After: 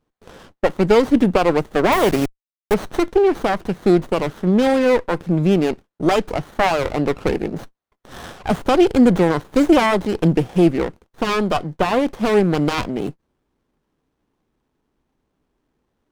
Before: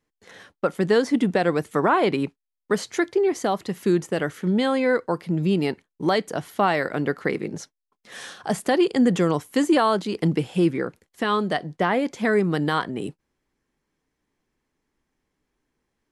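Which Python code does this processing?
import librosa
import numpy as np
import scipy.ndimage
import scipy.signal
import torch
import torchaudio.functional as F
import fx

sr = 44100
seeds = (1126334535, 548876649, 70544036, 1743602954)

y = fx.delta_hold(x, sr, step_db=-27.0, at=(1.92, 2.74))
y = fx.running_max(y, sr, window=17)
y = F.gain(torch.from_numpy(y), 6.5).numpy()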